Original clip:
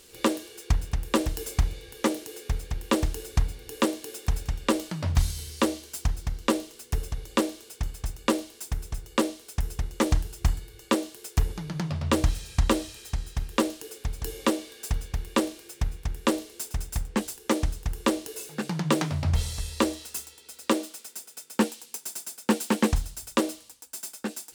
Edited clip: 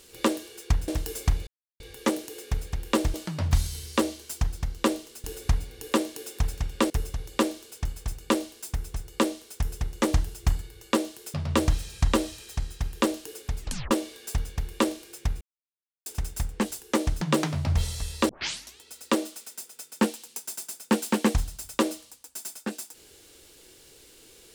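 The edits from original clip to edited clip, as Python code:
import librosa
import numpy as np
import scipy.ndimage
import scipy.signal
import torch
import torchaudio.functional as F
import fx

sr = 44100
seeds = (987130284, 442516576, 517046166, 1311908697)

y = fx.edit(x, sr, fx.cut(start_s=0.88, length_s=0.31),
    fx.insert_silence(at_s=1.78, length_s=0.33),
    fx.move(start_s=3.12, length_s=1.66, to_s=6.88),
    fx.cut(start_s=11.32, length_s=0.58),
    fx.tape_stop(start_s=14.14, length_s=0.33),
    fx.silence(start_s=15.97, length_s=0.65),
    fx.cut(start_s=17.77, length_s=1.02),
    fx.tape_start(start_s=19.87, length_s=0.52), tone=tone)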